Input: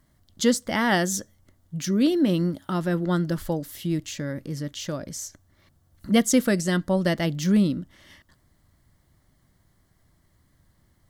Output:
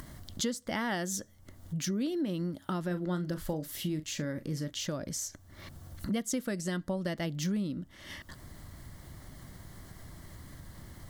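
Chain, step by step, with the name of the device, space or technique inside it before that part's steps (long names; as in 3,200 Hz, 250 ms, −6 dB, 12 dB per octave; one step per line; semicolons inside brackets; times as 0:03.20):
upward and downward compression (upward compression, threshold −30 dBFS; downward compressor 6 to 1, threshold −28 dBFS, peak gain reduction 13.5 dB)
0:02.87–0:04.70: double-tracking delay 39 ms −12 dB
level −2 dB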